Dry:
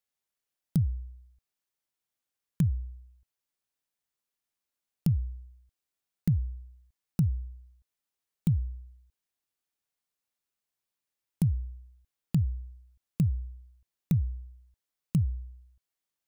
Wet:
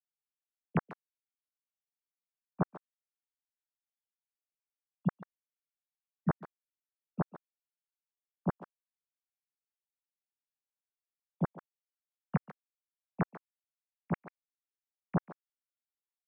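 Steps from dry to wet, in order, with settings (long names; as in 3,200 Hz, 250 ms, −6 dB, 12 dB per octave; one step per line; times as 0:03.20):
three sine waves on the formant tracks
far-end echo of a speakerphone 140 ms, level −13 dB
level −8.5 dB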